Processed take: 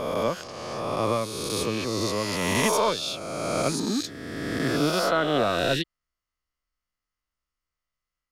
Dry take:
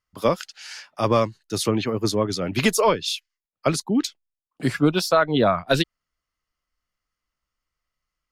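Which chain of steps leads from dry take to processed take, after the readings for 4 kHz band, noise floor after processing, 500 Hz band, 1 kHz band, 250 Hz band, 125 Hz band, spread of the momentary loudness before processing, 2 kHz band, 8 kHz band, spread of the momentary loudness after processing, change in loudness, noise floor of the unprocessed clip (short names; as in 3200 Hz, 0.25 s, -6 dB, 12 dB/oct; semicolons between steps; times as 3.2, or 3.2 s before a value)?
-1.5 dB, under -85 dBFS, -3.5 dB, -2.5 dB, -4.5 dB, -5.0 dB, 10 LU, -1.0 dB, -0.5 dB, 9 LU, -3.5 dB, under -85 dBFS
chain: spectral swells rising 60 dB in 2.07 s; gain -8.5 dB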